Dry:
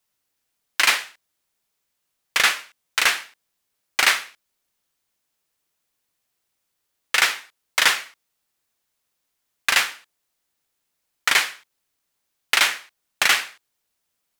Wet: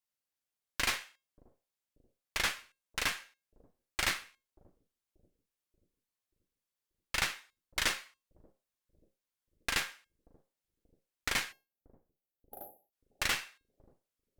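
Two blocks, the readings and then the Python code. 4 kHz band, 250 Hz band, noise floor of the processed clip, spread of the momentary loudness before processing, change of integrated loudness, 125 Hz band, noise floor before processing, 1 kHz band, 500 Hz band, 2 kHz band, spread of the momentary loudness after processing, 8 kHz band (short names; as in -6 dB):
-14.5 dB, -4.0 dB, under -85 dBFS, 11 LU, -14.5 dB, n/a, -77 dBFS, -14.5 dB, -10.5 dB, -15.5 dB, 16 LU, -13.5 dB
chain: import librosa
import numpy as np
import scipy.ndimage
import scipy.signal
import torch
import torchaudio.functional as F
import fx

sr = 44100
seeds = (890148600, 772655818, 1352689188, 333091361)

p1 = fx.spec_erase(x, sr, start_s=11.52, length_s=1.41, low_hz=850.0, high_hz=11000.0)
p2 = fx.comb_fb(p1, sr, f0_hz=540.0, decay_s=0.28, harmonics='all', damping=0.0, mix_pct=60)
p3 = fx.cheby_harmonics(p2, sr, harmonics=(4,), levels_db=(-11,), full_scale_db=-9.5)
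p4 = p3 + fx.echo_bbd(p3, sr, ms=583, stages=2048, feedback_pct=48, wet_db=-20, dry=0)
y = F.gain(torch.from_numpy(p4), -8.0).numpy()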